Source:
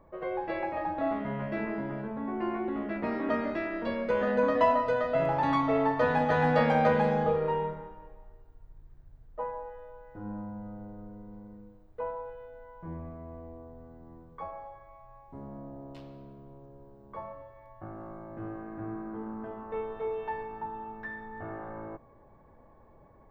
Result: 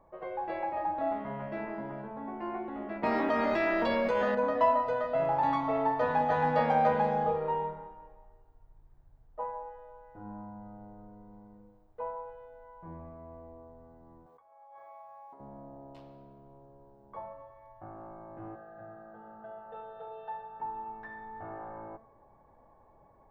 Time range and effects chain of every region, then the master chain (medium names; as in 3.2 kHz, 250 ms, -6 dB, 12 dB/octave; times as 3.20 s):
3.03–4.35 s: treble shelf 2.8 kHz +11.5 dB + level flattener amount 100%
14.26–15.40 s: high-pass 440 Hz + compressor with a negative ratio -53 dBFS
18.55–20.60 s: high-pass 140 Hz 6 dB/octave + static phaser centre 1.5 kHz, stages 8 + comb 5.9 ms, depth 64%
whole clip: peaking EQ 820 Hz +8.5 dB 0.95 oct; de-hum 74.02 Hz, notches 27; trim -6.5 dB